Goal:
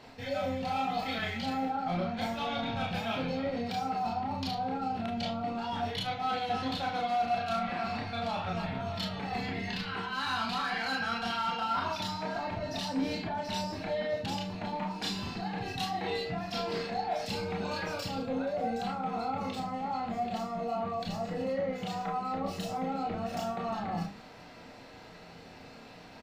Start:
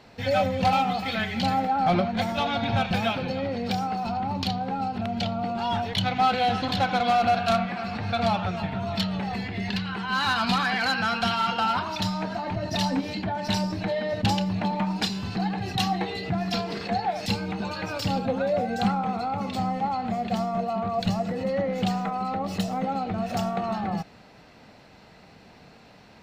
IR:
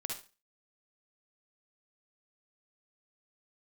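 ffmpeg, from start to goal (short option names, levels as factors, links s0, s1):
-filter_complex "[0:a]bandreject=f=50:t=h:w=6,bandreject=f=100:t=h:w=6,bandreject=f=150:t=h:w=6,bandreject=f=200:t=h:w=6,bandreject=f=250:t=h:w=6,bandreject=f=300:t=h:w=6,areverse,acompressor=threshold=0.0251:ratio=6,areverse,asplit=2[s0][s1];[s1]adelay=41,volume=0.282[s2];[s0][s2]amix=inputs=2:normalize=0[s3];[1:a]atrim=start_sample=2205,asetrate=88200,aresample=44100[s4];[s3][s4]afir=irnorm=-1:irlink=0,volume=2.37"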